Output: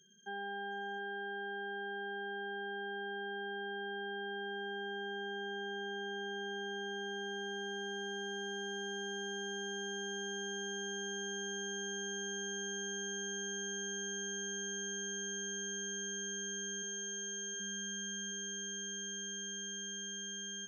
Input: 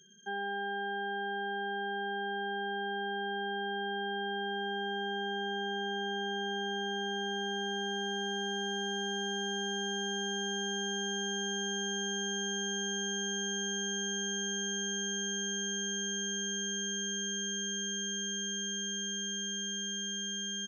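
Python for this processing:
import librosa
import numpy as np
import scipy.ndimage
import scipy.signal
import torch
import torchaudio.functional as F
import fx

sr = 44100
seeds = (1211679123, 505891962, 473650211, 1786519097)

p1 = fx.highpass(x, sr, hz=330.0, slope=24, at=(16.82, 17.59), fade=0.02)
p2 = p1 + fx.echo_single(p1, sr, ms=712, db=-8.5, dry=0)
y = p2 * 10.0 ** (-5.5 / 20.0)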